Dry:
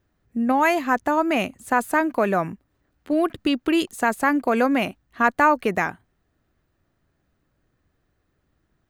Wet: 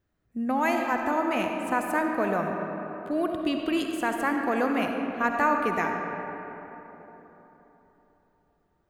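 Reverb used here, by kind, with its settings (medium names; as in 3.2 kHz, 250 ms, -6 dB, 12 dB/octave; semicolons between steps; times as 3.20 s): algorithmic reverb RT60 3.9 s, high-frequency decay 0.45×, pre-delay 25 ms, DRR 2.5 dB; trim -7 dB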